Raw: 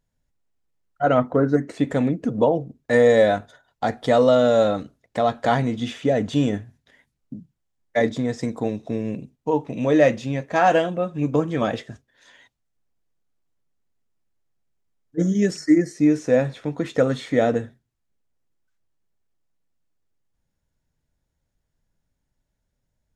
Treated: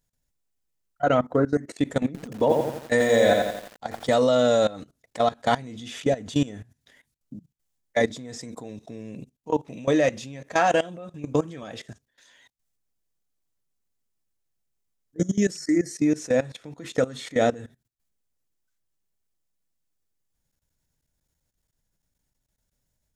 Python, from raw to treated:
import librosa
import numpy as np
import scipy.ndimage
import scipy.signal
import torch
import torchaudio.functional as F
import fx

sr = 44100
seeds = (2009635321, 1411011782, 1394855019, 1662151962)

y = fx.high_shelf(x, sr, hz=4200.0, db=12.0)
y = fx.level_steps(y, sr, step_db=19)
y = fx.echo_crushed(y, sr, ms=86, feedback_pct=55, bits=7, wet_db=-3.0, at=(2.06, 4.14))